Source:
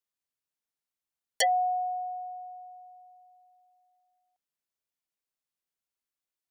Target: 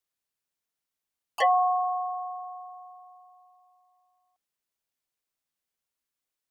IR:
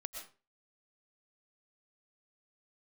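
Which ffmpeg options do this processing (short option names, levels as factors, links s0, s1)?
-filter_complex "[0:a]asplit=2[s0][s1];[s1]asetrate=66075,aresample=44100,atempo=0.66742,volume=0.562[s2];[s0][s2]amix=inputs=2:normalize=0,acrossover=split=2500[s3][s4];[s4]acompressor=threshold=0.00398:ratio=4:attack=1:release=60[s5];[s3][s5]amix=inputs=2:normalize=0,volume=1.33"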